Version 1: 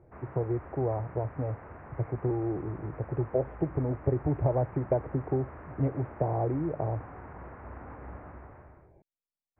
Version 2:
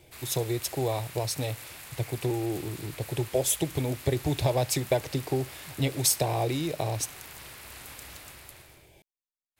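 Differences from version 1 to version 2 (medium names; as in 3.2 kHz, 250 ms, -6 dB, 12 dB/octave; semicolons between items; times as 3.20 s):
background -9.5 dB; master: remove Gaussian low-pass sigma 7.3 samples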